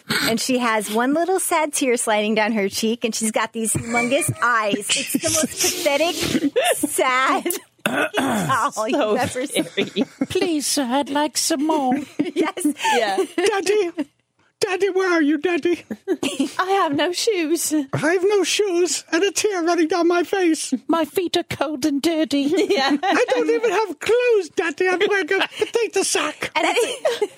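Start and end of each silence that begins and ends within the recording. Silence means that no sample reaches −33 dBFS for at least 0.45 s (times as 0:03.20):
0:14.03–0:14.62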